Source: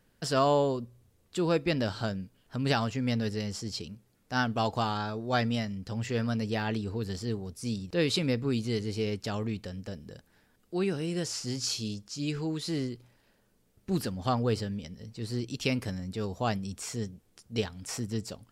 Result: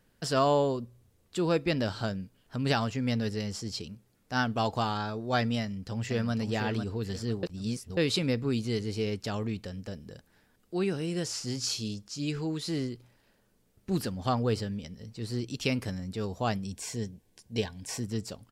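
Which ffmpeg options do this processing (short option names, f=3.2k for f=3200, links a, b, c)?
-filter_complex "[0:a]asplit=2[a][b];[b]afade=t=in:st=5.6:d=0.01,afade=t=out:st=6.33:d=0.01,aecho=0:1:500|1000|1500|2000:0.446684|0.134005|0.0402015|0.0120605[c];[a][c]amix=inputs=2:normalize=0,asettb=1/sr,asplit=3[d][e][f];[d]atrim=end=16.654[g];[e]atrim=start=16.65:end=18.03,asetpts=PTS-STARTPTS,afade=t=in:d=0.004:c=qsin,afade=t=out:st=1.376:d=0.004:c=qsin,asuperstop=centerf=1300:order=20:qfactor=4.5[h];[f]atrim=start=18.026[i];[g][h]acrossfade=d=0.004:c1=hsin:c2=qsin[j];[j][i]acrossfade=d=0.004:c1=qsin:c2=hsin,asplit=3[k][l][m];[k]atrim=end=7.432[n];[l]atrim=start=7.428:end=7.972,asetpts=PTS-STARTPTS,areverse[o];[m]atrim=start=7.968[p];[n][o]acrossfade=d=0.004:c1=hsin:c2=hsin[q];[q][p]acrossfade=d=0.004:c1=hsin:c2=hsin"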